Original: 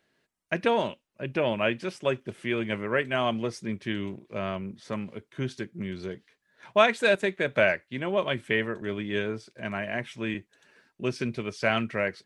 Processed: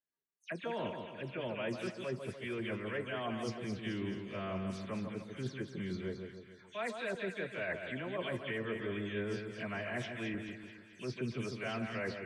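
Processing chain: spectral delay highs early, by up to 0.119 s; notch 810 Hz, Q 16; reverse; compressor 16:1, threshold -33 dBFS, peak gain reduction 19.5 dB; reverse; spectral noise reduction 27 dB; split-band echo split 1400 Hz, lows 0.146 s, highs 0.216 s, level -6 dB; gain -2.5 dB

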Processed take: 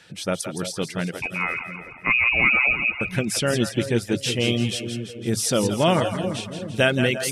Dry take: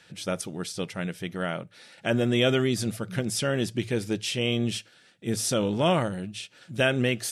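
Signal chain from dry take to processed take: 1.22–3.01 inverted band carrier 2700 Hz; split-band echo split 520 Hz, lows 0.354 s, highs 0.167 s, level -7 dB; reverb removal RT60 0.52 s; gain +4.5 dB

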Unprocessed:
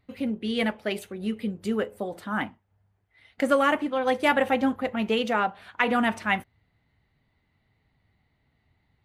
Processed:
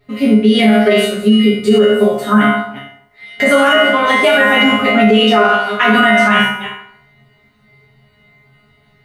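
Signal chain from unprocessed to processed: reverse delay 0.185 s, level -14 dB; flange 1.6 Hz, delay 2.8 ms, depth 6.3 ms, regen -41%; resonator bank C#3 fifth, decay 0.48 s; reverb RT60 0.70 s, pre-delay 4 ms, DRR -3.5 dB; maximiser +35 dB; gain -1 dB

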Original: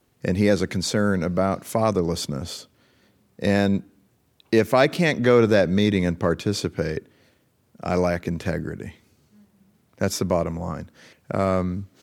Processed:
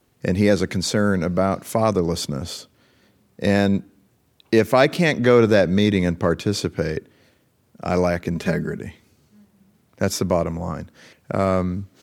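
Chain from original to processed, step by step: 8.35–8.79 comb 4.9 ms, depth 82%; gain +2 dB

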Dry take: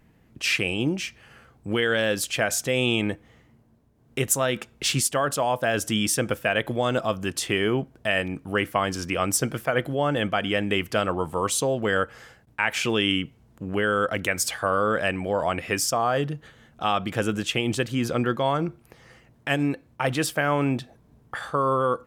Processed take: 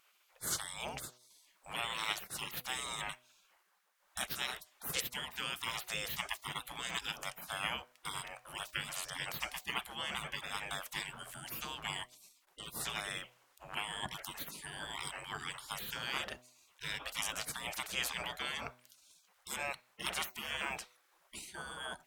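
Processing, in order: spectral gate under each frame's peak -25 dB weak; bell 150 Hz +9 dB 0.69 oct; de-hum 123.8 Hz, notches 6; gain +4.5 dB

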